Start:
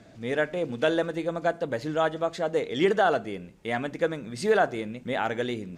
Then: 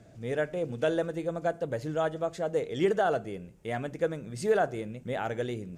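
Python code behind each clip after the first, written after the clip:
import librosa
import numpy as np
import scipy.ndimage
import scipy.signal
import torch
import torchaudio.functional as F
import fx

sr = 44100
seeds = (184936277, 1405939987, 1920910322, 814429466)

y = fx.graphic_eq_10(x, sr, hz=(125, 250, 1000, 2000, 4000), db=(3, -6, -6, -5, -8))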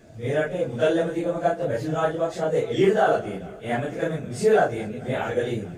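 y = fx.phase_scramble(x, sr, seeds[0], window_ms=100)
y = fx.echo_warbled(y, sr, ms=218, feedback_pct=78, rate_hz=2.8, cents=91, wet_db=-22.0)
y = y * 10.0 ** (6.5 / 20.0)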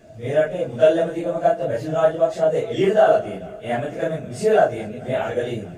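y = fx.small_body(x, sr, hz=(640.0, 2800.0), ring_ms=45, db=10)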